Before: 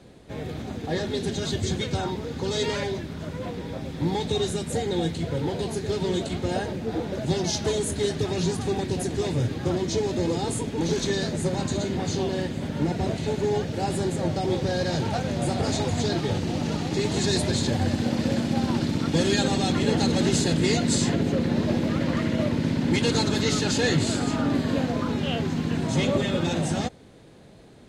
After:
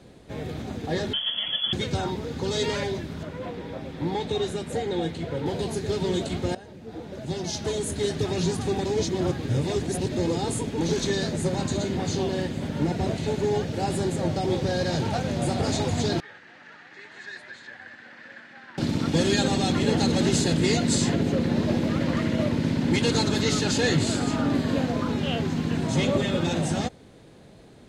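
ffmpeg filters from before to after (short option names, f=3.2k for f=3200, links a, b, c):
-filter_complex "[0:a]asettb=1/sr,asplit=3[a][b][c];[a]atrim=end=1.134[d];[b]atrim=start=1.13:end=1.73,asetpts=PTS-STARTPTS,afade=t=in:d=0.004:c=qsin,afade=t=out:st=0.596:d=0.004:c=qsin,lowpass=f=3k:t=q:w=0.5098,lowpass=f=3k:t=q:w=0.6013,lowpass=f=3k:t=q:w=0.9,lowpass=f=3k:t=q:w=2.563,afreqshift=-3500[e];[c]atrim=start=1.726[f];[d][e]acrossfade=d=0.004:c1=hsin:c2=qsin[g];[g][f]acrossfade=d=0.004:c1=qsin:c2=hsin,asettb=1/sr,asplit=3[h][i][j];[h]atrim=end=3.234[k];[i]atrim=start=3.23:end=5.46,asetpts=PTS-STARTPTS,afade=t=in:d=0.004:c=qsin,afade=t=out:st=2.226:d=0.004:c=qsin,bass=f=250:g=-5,treble=f=4k:g=-8[l];[j]atrim=start=5.456[m];[k][l]acrossfade=d=0.004:c1=hsin:c2=qsin[n];[n][m]acrossfade=d=0.004:c1=qsin:c2=hsin,asettb=1/sr,asplit=3[o][p][q];[o]atrim=end=16.204[r];[p]atrim=start=16.2:end=18.78,asetpts=PTS-STARTPTS,afade=t=in:d=0.004:c=qsin,afade=t=out:st=2.576:d=0.004:c=qsin,bandpass=f=1.7k:t=q:w=5[s];[q]atrim=start=18.776[t];[r][s]acrossfade=d=0.004:c1=hsin:c2=qsin[u];[u][t]acrossfade=d=0.004:c1=qsin:c2=hsin,asplit=4[v][w][x][y];[v]atrim=end=6.55,asetpts=PTS-STARTPTS,afade=t=out:st=6.546:d=0.004:c=hsin:silence=0.11885[z];[w]atrim=start=6.55:end=8.852,asetpts=PTS-STARTPTS,afade=t=in:d=1.71:silence=0.11885[aa];[x]atrim=start=8.848:end=10.122,asetpts=PTS-STARTPTS,areverse[ab];[y]atrim=start=10.118[ac];[z][aa]concat=n=2:v=0:a=1[ad];[ad][ab]acrossfade=d=0.004:c1=hsin:c2=hsin[ae];[ae][ac]acrossfade=d=0.004:c1=hsin:c2=hsin"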